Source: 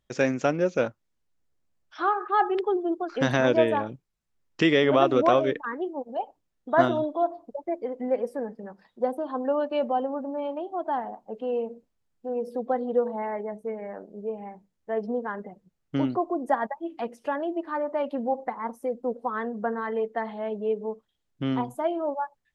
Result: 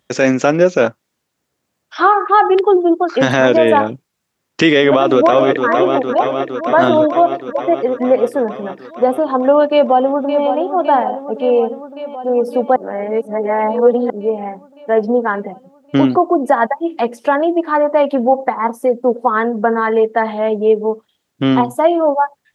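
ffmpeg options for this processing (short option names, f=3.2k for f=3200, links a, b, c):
-filter_complex "[0:a]asplit=2[a][b];[b]afade=t=in:st=4.84:d=0.01,afade=t=out:st=5.68:d=0.01,aecho=0:1:460|920|1380|1840|2300|2760|3220|3680|4140|4600|5060|5520:0.281838|0.211379|0.158534|0.118901|0.0891754|0.0668815|0.0501612|0.0376209|0.0282157|0.0211617|0.0158713|0.0119035[c];[a][c]amix=inputs=2:normalize=0,asplit=2[d][e];[e]afade=t=in:st=9.72:d=0.01,afade=t=out:st=10.47:d=0.01,aecho=0:1:560|1120|1680|2240|2800|3360|3920|4480|5040|5600|6160|6720:0.316228|0.237171|0.177878|0.133409|0.100056|0.0750423|0.0562817|0.0422113|0.0316585|0.0237439|0.0178079|0.0133559[f];[d][f]amix=inputs=2:normalize=0,asplit=3[g][h][i];[g]atrim=end=12.762[j];[h]atrim=start=12.758:end=14.102,asetpts=PTS-STARTPTS,areverse[k];[i]atrim=start=14.098[l];[j][k]acrossfade=d=0.004:c1=hsin:c2=hsin[m];[m][l]acrossfade=d=0.004:c1=hsin:c2=hsin,highpass=100,lowshelf=f=150:g=-6.5,alimiter=level_in=16.5dB:limit=-1dB:release=50:level=0:latency=1,volume=-1dB"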